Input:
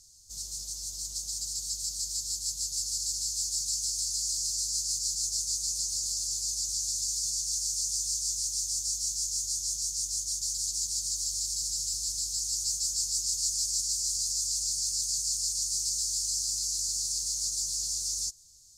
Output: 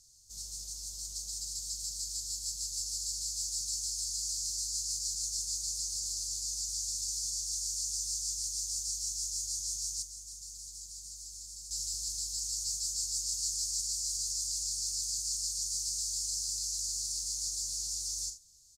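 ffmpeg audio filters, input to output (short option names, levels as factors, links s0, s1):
-filter_complex "[0:a]aecho=1:1:42|79:0.355|0.2,asettb=1/sr,asplit=3[s0][s1][s2];[s0]atrim=end=10.024[s3];[s1]atrim=start=10.02:end=11.71,asetpts=PTS-STARTPTS,afade=t=in:d=0.004:c=qsin,afade=t=out:st=1.686:d=0.004:c=qsin,acrossover=split=2200|5600[s4][s5][s6];[s4]acompressor=threshold=0.00224:ratio=4[s7];[s5]acompressor=threshold=0.00251:ratio=4[s8];[s6]acompressor=threshold=0.00794:ratio=4[s9];[s7][s8][s9]amix=inputs=3:normalize=0[s10];[s2]atrim=start=11.706[s11];[s3][s10]acrossfade=d=0.004:c1=hsin:c2=qsin[s12];[s12][s11]acrossfade=d=0.004:c1=qsin:c2=hsin,volume=0.562"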